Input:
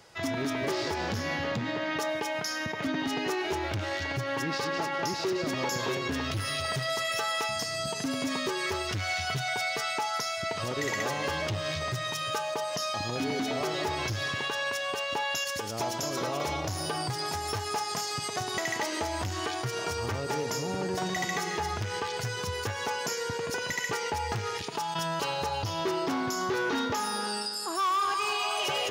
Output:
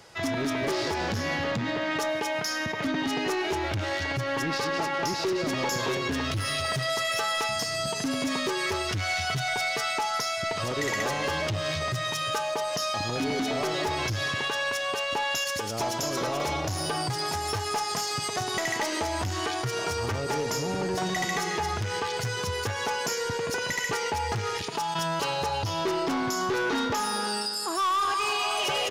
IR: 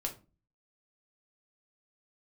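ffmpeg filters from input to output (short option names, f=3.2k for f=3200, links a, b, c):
-af "aresample=32000,aresample=44100,aeval=exprs='0.133*(cos(1*acos(clip(val(0)/0.133,-1,1)))-cos(1*PI/2))+0.00531*(cos(2*acos(clip(val(0)/0.133,-1,1)))-cos(2*PI/2))+0.015*(cos(5*acos(clip(val(0)/0.133,-1,1)))-cos(5*PI/2))':c=same"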